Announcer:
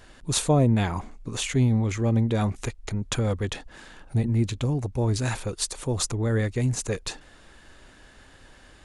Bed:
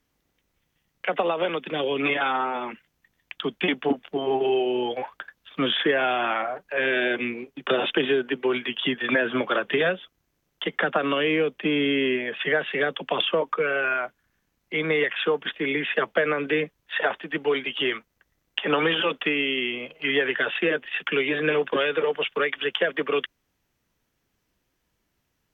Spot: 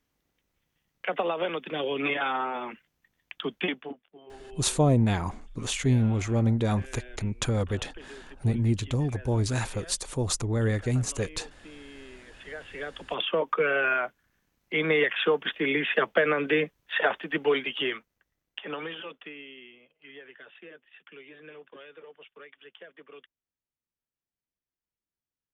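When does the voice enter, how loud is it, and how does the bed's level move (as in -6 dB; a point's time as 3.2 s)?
4.30 s, -1.5 dB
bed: 3.65 s -4 dB
4.08 s -24.5 dB
12.14 s -24.5 dB
13.51 s -0.5 dB
17.51 s -0.5 dB
19.87 s -24.5 dB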